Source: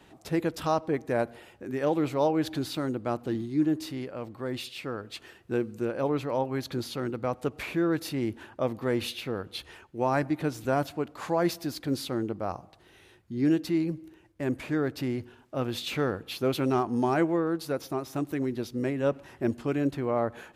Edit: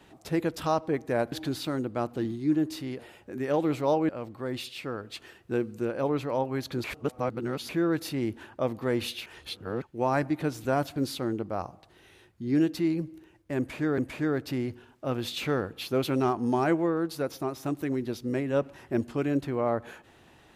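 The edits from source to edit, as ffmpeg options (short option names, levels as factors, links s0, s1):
-filter_complex "[0:a]asplit=10[s0][s1][s2][s3][s4][s5][s6][s7][s8][s9];[s0]atrim=end=1.322[s10];[s1]atrim=start=2.418:end=4.092[s11];[s2]atrim=start=1.318:end=2.422[s12];[s3]atrim=start=4.088:end=6.842[s13];[s4]atrim=start=6.838:end=7.692,asetpts=PTS-STARTPTS,areverse[s14];[s5]atrim=start=7.688:end=9.262[s15];[s6]atrim=start=9.258:end=9.822,asetpts=PTS-STARTPTS,areverse[s16];[s7]atrim=start=9.818:end=10.962[s17];[s8]atrim=start=11.858:end=14.882[s18];[s9]atrim=start=14.478[s19];[s10][s11]acrossfade=d=0.004:c1=hsin:c2=hsin[s20];[s20][s12]acrossfade=d=0.004:c1=hsin:c2=hsin[s21];[s21][s13]acrossfade=d=0.004:c1=hsin:c2=hsin[s22];[s22][s14]acrossfade=d=0.004:c1=hsin:c2=hsin[s23];[s23][s15]acrossfade=d=0.004:c1=hsin:c2=hsin[s24];[s24][s16]acrossfade=d=0.004:c1=hsin:c2=hsin[s25];[s25][s17]acrossfade=d=0.004:c1=hsin:c2=hsin[s26];[s26][s18]acrossfade=d=0.004:c1=hsin:c2=hsin[s27];[s27][s19]acrossfade=d=0.004:c1=hsin:c2=hsin"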